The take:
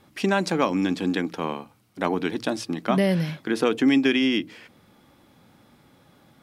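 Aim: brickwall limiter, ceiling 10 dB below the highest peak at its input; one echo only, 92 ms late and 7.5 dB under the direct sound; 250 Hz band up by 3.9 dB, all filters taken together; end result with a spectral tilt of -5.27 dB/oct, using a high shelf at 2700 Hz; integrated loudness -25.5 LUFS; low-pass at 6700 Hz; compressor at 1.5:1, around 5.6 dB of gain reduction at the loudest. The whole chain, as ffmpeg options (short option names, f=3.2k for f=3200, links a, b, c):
-af "lowpass=6.7k,equalizer=f=250:t=o:g=4.5,highshelf=f=2.7k:g=7.5,acompressor=threshold=-27dB:ratio=1.5,alimiter=limit=-20dB:level=0:latency=1,aecho=1:1:92:0.422,volume=3.5dB"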